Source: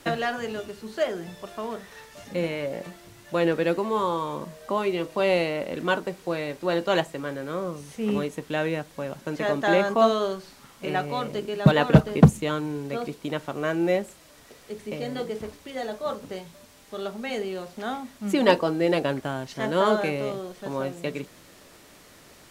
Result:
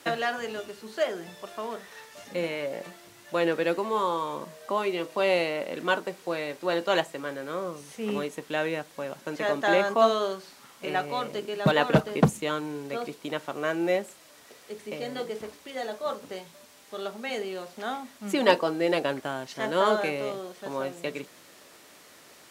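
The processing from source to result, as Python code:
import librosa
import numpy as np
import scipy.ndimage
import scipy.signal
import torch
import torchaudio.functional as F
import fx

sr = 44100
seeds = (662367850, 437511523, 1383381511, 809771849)

y = fx.highpass(x, sr, hz=380.0, slope=6)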